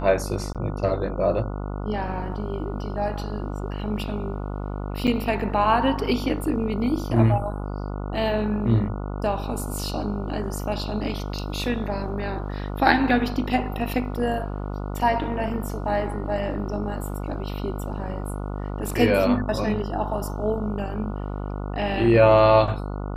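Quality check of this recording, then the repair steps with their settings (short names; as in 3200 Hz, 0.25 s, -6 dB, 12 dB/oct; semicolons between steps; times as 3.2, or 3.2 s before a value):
buzz 50 Hz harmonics 29 -30 dBFS
0.53–0.55 gap 17 ms
5.07–5.08 gap 7.1 ms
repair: de-hum 50 Hz, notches 29; interpolate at 0.53, 17 ms; interpolate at 5.07, 7.1 ms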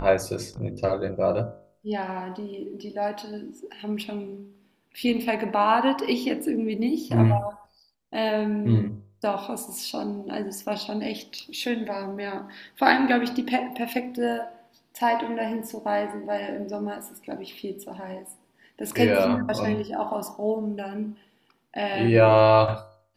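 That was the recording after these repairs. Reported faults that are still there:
none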